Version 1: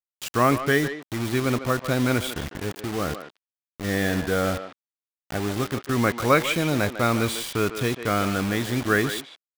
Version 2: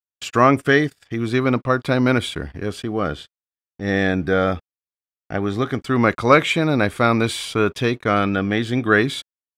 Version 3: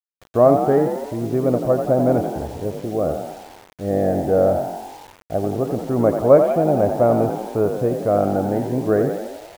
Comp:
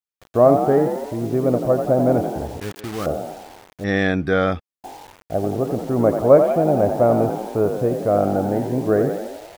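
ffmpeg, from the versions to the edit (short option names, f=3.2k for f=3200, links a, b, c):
-filter_complex "[2:a]asplit=3[a][b][c];[a]atrim=end=2.602[d];[0:a]atrim=start=2.598:end=3.062[e];[b]atrim=start=3.058:end=3.842[f];[1:a]atrim=start=3.838:end=4.842[g];[c]atrim=start=4.838[h];[d][e]acrossfade=d=0.004:c1=hsin:c2=hsin[i];[i][f]acrossfade=d=0.004:c1=hsin:c2=hsin[j];[j][g]acrossfade=d=0.004:c1=hsin:c2=hsin[k];[k][h]acrossfade=d=0.004:c1=hsin:c2=hsin"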